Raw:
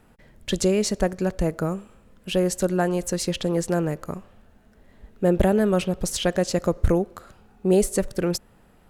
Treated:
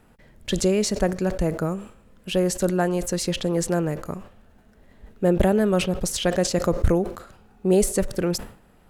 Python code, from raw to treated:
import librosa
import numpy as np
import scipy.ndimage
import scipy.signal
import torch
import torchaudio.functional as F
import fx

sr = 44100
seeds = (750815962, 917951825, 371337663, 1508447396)

y = fx.sustainer(x, sr, db_per_s=120.0)